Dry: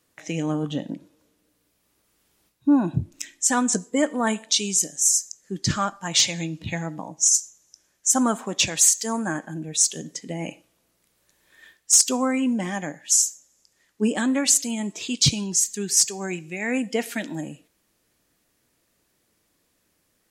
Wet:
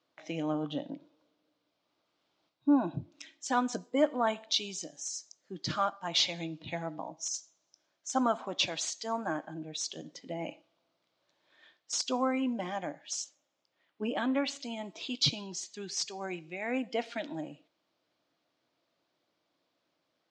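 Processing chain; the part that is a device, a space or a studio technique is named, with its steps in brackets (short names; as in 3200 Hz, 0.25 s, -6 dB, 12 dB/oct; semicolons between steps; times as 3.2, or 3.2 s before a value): kitchen radio (speaker cabinet 210–4500 Hz, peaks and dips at 210 Hz -9 dB, 420 Hz -7 dB, 650 Hz +4 dB, 1800 Hz -8 dB, 2600 Hz -4 dB); 13.24–14.61 resonant high shelf 3800 Hz -6.5 dB, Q 1.5; gain -4 dB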